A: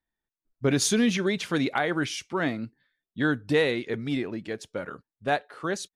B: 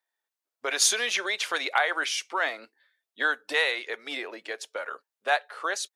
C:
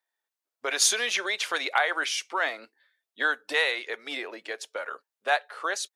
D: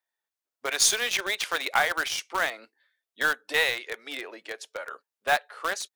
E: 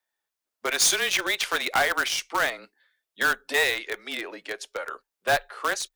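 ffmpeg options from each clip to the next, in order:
-filter_complex "[0:a]highpass=f=490:w=0.5412,highpass=f=490:w=1.3066,acrossover=split=690[a][b];[a]acompressor=threshold=-42dB:ratio=6[c];[c][b]amix=inputs=2:normalize=0,volume=4.5dB"
-af anull
-filter_complex "[0:a]asplit=2[a][b];[b]acrusher=bits=3:mix=0:aa=0.000001,volume=-7dB[c];[a][c]amix=inputs=2:normalize=0,aeval=exprs='0.501*(cos(1*acos(clip(val(0)/0.501,-1,1)))-cos(1*PI/2))+0.00501*(cos(6*acos(clip(val(0)/0.501,-1,1)))-cos(6*PI/2))':c=same,volume=-2.5dB"
-af "volume=19.5dB,asoftclip=hard,volume=-19.5dB,afreqshift=-24,volume=3.5dB"

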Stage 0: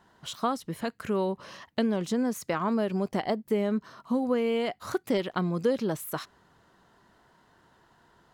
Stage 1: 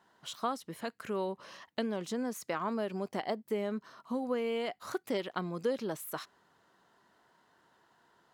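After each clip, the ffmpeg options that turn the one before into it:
-af "highpass=f=300:p=1,volume=-4.5dB"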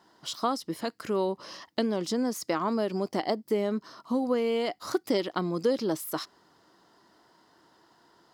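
-af "equalizer=f=315:t=o:w=0.33:g=8,equalizer=f=1.6k:t=o:w=0.33:g=-4,equalizer=f=2.5k:t=o:w=0.33:g=-4,equalizer=f=5k:t=o:w=0.33:g=10,volume=5.5dB"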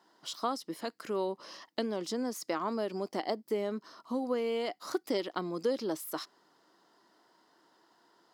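-af "highpass=220,volume=-4.5dB"

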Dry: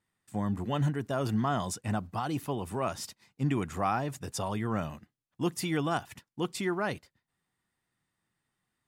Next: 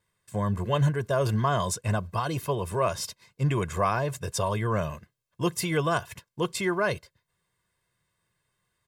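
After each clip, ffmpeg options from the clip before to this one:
-af "aecho=1:1:1.9:0.74,volume=4dB"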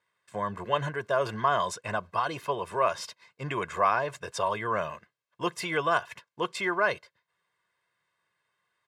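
-af "bandpass=f=1.4k:t=q:w=0.59:csg=0,volume=3dB"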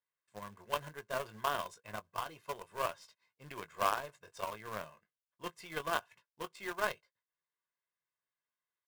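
-filter_complex "[0:a]asplit=2[a][b];[b]adelay=19,volume=-8dB[c];[a][c]amix=inputs=2:normalize=0,acrusher=bits=4:mode=log:mix=0:aa=0.000001,aeval=exprs='0.282*(cos(1*acos(clip(val(0)/0.282,-1,1)))-cos(1*PI/2))+0.0282*(cos(2*acos(clip(val(0)/0.282,-1,1)))-cos(2*PI/2))+0.0355*(cos(3*acos(clip(val(0)/0.282,-1,1)))-cos(3*PI/2))+0.0141*(cos(4*acos(clip(val(0)/0.282,-1,1)))-cos(4*PI/2))+0.0158*(cos(7*acos(clip(val(0)/0.282,-1,1)))-cos(7*PI/2))':c=same,volume=-7.5dB"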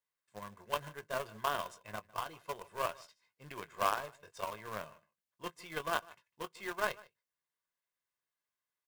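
-af "aecho=1:1:152:0.075"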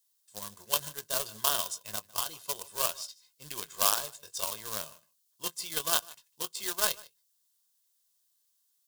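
-af "aexciter=amount=8.9:drive=2.6:freq=3.2k"

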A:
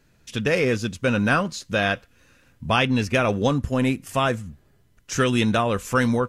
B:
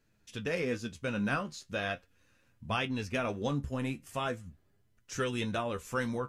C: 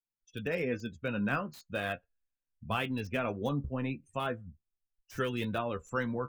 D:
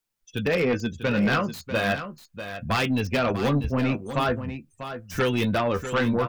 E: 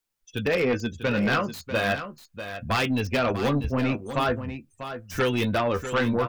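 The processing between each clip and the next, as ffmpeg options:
-af "flanger=delay=8.8:depth=6:regen=49:speed=0.4:shape=triangular,volume=-8dB"
-filter_complex "[0:a]afftdn=nr=34:nf=-46,acrossover=split=210|4000[a][b][c];[c]aeval=exprs='(mod(266*val(0)+1,2)-1)/266':c=same[d];[a][b][d]amix=inputs=3:normalize=0"
-af "aeval=exprs='0.133*sin(PI/2*2.51*val(0)/0.133)':c=same,aecho=1:1:644:0.299"
-af "equalizer=f=170:t=o:w=0.54:g=-5"

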